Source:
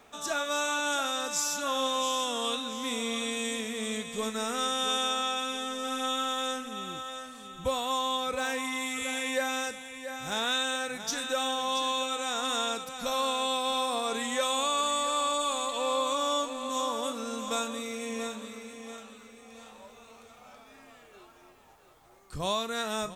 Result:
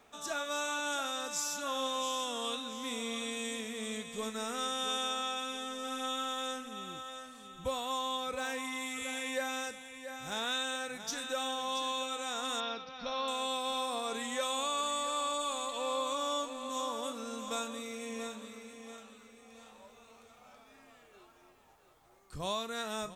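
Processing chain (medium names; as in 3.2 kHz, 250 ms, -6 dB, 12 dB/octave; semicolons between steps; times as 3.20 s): 12.60–13.28 s: elliptic low-pass 5.4 kHz, stop band 40 dB; trim -5.5 dB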